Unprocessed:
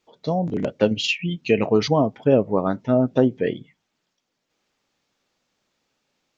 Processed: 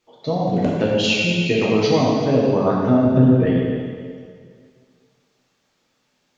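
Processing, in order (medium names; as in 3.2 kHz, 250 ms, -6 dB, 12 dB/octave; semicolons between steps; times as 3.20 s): 3.05–3.46 s: tone controls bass +13 dB, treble -12 dB; compression 2.5:1, threshold -19 dBFS, peak gain reduction 9 dB; plate-style reverb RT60 2.1 s, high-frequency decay 0.95×, DRR -5 dB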